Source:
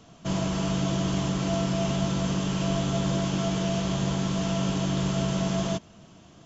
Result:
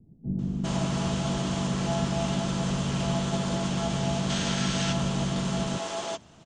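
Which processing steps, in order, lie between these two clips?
bands offset in time lows, highs 390 ms, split 320 Hz; time-frequency box 4.30–4.93 s, 1.3–6.8 kHz +7 dB; harmony voices +4 st -7 dB; trim -1 dB

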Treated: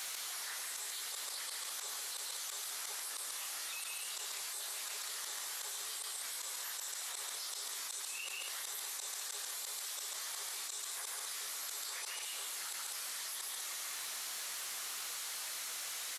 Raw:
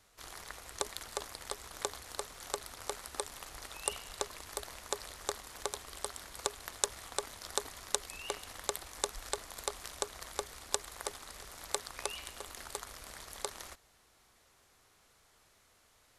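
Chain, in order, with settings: phase randomisation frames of 100 ms; high-pass 120 Hz 24 dB/octave; treble shelf 5.6 kHz -11.5 dB; slow attack 623 ms; differentiator; loudspeakers at several distances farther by 48 m -6 dB, 68 m -10 dB; level flattener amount 100%; trim +9.5 dB

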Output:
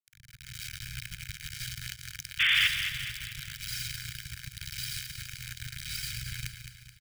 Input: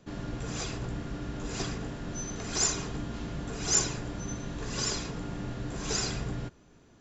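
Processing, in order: steep low-pass 5.1 kHz 72 dB/octave; bit crusher 5-bit; reverse; compression 6:1, threshold -47 dBFS, peak gain reduction 19 dB; reverse; comb 1.3 ms, depth 70%; level rider gain up to 14 dB; painted sound noise, 2.39–2.68 s, 220–3600 Hz -21 dBFS; elliptic band-stop 130–1800 Hz, stop band 50 dB; bass shelf 65 Hz -9.5 dB; feedback delay 214 ms, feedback 50%, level -8.5 dB

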